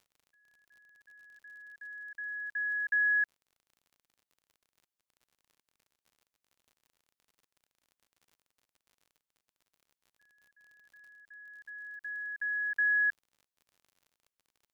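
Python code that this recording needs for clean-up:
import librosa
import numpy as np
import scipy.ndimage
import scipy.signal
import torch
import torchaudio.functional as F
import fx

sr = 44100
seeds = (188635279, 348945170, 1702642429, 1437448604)

y = fx.fix_declick_ar(x, sr, threshold=6.5)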